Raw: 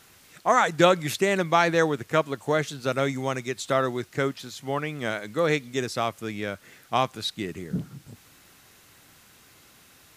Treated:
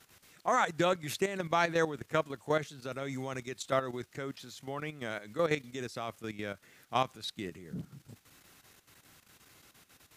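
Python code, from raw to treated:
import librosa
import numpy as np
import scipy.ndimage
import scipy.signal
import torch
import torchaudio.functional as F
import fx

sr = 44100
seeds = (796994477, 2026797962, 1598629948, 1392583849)

y = fx.level_steps(x, sr, step_db=11)
y = F.gain(torch.from_numpy(y), -4.5).numpy()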